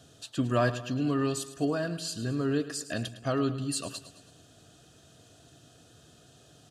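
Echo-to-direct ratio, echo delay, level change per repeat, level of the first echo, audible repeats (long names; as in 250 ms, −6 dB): −12.5 dB, 108 ms, −6.0 dB, −14.0 dB, 4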